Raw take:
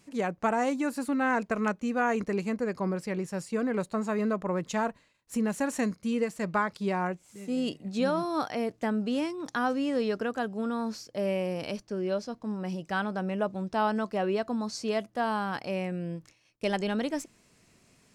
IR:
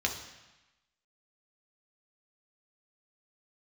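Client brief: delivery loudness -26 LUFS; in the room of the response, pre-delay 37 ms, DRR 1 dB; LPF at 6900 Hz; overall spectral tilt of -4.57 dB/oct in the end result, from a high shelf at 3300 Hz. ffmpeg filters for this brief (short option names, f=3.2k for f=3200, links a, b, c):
-filter_complex "[0:a]lowpass=6.9k,highshelf=f=3.3k:g=4.5,asplit=2[a][b];[1:a]atrim=start_sample=2205,adelay=37[c];[b][c]afir=irnorm=-1:irlink=0,volume=-8dB[d];[a][d]amix=inputs=2:normalize=0,volume=2dB"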